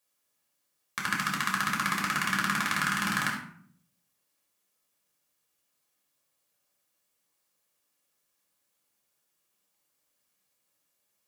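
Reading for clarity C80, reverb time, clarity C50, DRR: 8.5 dB, 0.55 s, 4.5 dB, -3.5 dB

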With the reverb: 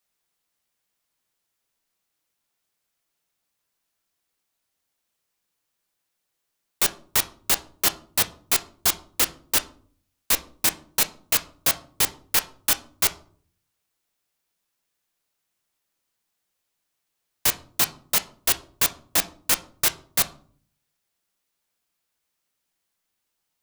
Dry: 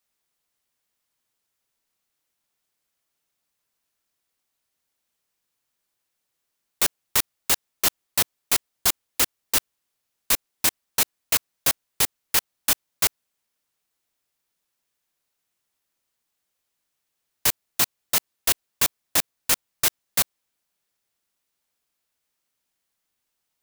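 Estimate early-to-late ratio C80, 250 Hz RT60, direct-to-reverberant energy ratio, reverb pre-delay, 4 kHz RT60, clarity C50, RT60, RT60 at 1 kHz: 21.0 dB, 0.75 s, 9.0 dB, 6 ms, 0.30 s, 17.5 dB, 0.50 s, 0.45 s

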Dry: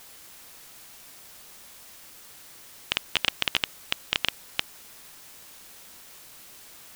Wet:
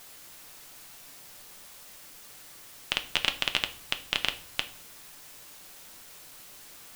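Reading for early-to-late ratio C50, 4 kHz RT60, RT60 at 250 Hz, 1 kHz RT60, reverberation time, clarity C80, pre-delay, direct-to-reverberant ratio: 15.0 dB, 0.40 s, 0.70 s, 0.45 s, 0.50 s, 19.0 dB, 5 ms, 6.5 dB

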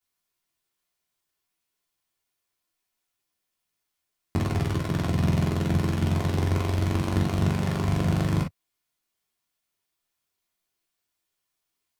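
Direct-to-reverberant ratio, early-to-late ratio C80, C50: -9.5 dB, 34.5 dB, 7.0 dB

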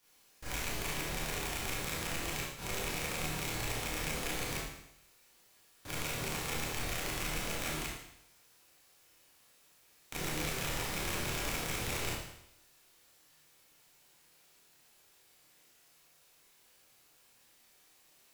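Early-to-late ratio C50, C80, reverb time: 0.0 dB, 3.5 dB, 0.75 s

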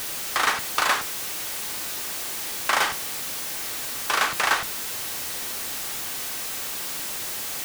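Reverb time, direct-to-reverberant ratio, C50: 0.45 s, 9.5 dB, 20.5 dB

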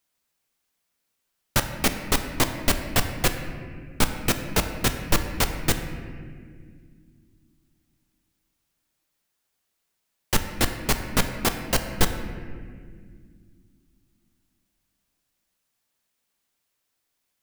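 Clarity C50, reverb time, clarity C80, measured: 7.5 dB, 2.0 s, 8.5 dB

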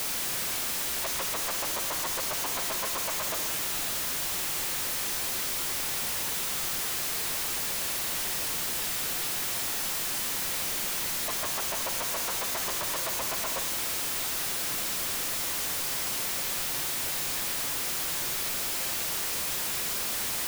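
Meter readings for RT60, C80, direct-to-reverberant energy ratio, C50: 2.6 s, 8.5 dB, 5.5 dB, 7.5 dB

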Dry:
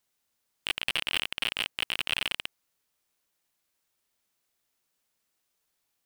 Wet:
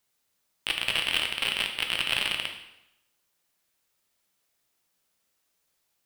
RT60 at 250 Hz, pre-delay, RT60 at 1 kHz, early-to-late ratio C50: 0.85 s, 5 ms, 0.85 s, 7.0 dB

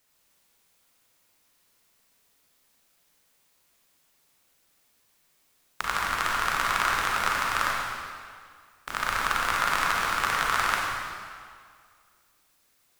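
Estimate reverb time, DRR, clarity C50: 2.0 s, -3.5 dB, -1.5 dB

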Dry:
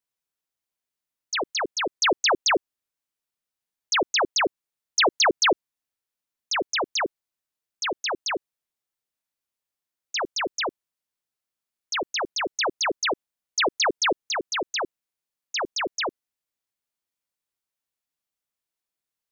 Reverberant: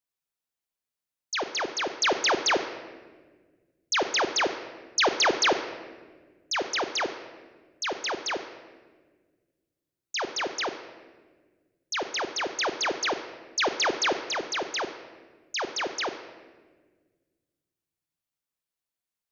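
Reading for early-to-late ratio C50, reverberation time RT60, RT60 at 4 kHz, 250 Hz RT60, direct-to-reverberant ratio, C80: 10.0 dB, 1.5 s, 1.0 s, 2.3 s, 8.0 dB, 11.0 dB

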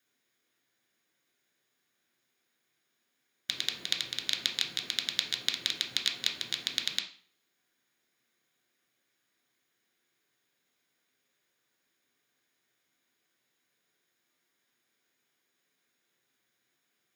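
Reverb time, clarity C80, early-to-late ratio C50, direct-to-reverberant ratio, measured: 0.45 s, 14.0 dB, 10.0 dB, 1.5 dB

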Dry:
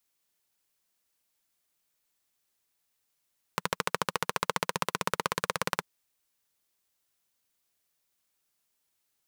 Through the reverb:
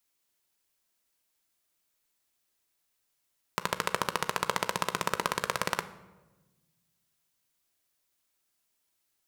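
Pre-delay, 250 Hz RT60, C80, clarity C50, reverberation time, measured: 3 ms, 1.8 s, 17.0 dB, 15.5 dB, 1.2 s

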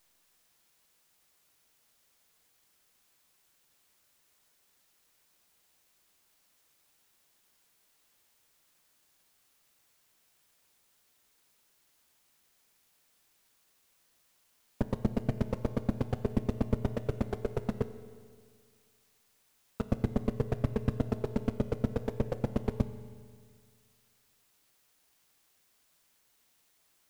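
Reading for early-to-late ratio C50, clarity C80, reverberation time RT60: 12.5 dB, 13.5 dB, 2.0 s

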